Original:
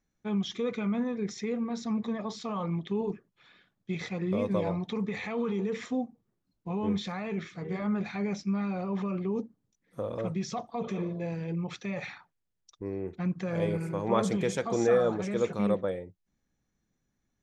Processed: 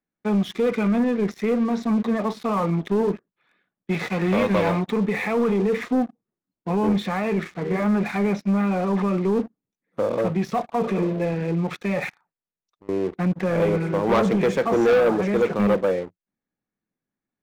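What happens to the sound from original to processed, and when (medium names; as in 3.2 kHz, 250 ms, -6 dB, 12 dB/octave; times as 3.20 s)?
3.91–4.80 s: formants flattened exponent 0.6
12.09–12.89 s: compression 3:1, threshold -58 dBFS
whole clip: three-band isolator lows -14 dB, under 160 Hz, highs -17 dB, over 3.1 kHz; band-stop 3.2 kHz, Q 16; waveshaping leveller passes 3; trim +1 dB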